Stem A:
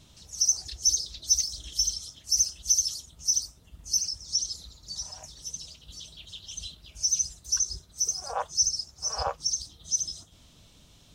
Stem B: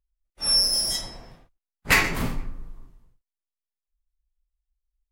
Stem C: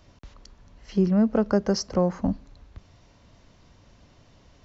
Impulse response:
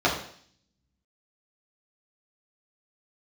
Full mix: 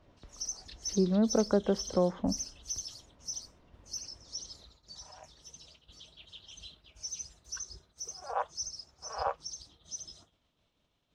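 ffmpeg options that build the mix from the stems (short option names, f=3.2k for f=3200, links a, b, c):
-filter_complex "[0:a]agate=range=-33dB:threshold=-46dB:ratio=3:detection=peak,highshelf=f=6.6k:g=-8.5,volume=-1.5dB[a];[2:a]tiltshelf=f=740:g=4.5,volume=-4.5dB[b];[a][b]amix=inputs=2:normalize=0,bass=f=250:g=-9,treble=f=4k:g=-11"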